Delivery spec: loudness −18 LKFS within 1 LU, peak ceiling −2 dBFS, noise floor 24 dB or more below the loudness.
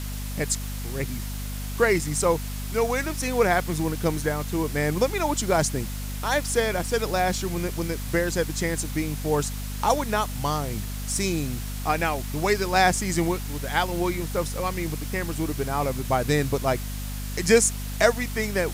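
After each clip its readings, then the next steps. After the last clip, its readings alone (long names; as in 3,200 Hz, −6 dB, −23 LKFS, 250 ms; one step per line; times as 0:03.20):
mains hum 50 Hz; hum harmonics up to 250 Hz; level of the hum −30 dBFS; background noise floor −32 dBFS; target noise floor −50 dBFS; integrated loudness −25.5 LKFS; sample peak −6.5 dBFS; target loudness −18.0 LKFS
→ hum removal 50 Hz, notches 5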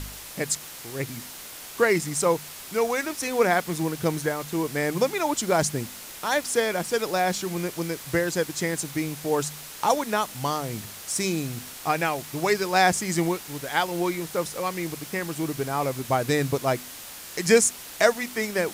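mains hum none found; background noise floor −41 dBFS; target noise floor −50 dBFS
→ broadband denoise 9 dB, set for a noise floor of −41 dBFS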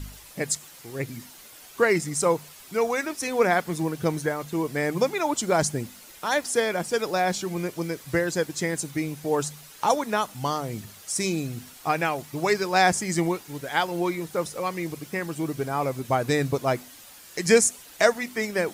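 background noise floor −48 dBFS; target noise floor −50 dBFS
→ broadband denoise 6 dB, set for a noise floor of −48 dBFS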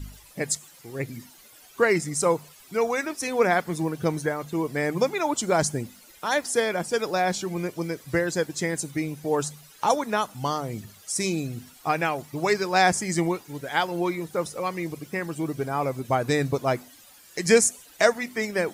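background noise floor −52 dBFS; integrated loudness −26.0 LKFS; sample peak −7.0 dBFS; target loudness −18.0 LKFS
→ level +8 dB
brickwall limiter −2 dBFS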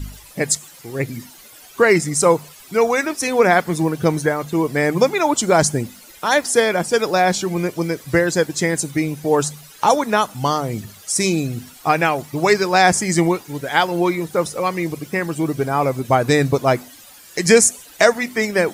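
integrated loudness −18.5 LKFS; sample peak −2.0 dBFS; background noise floor −44 dBFS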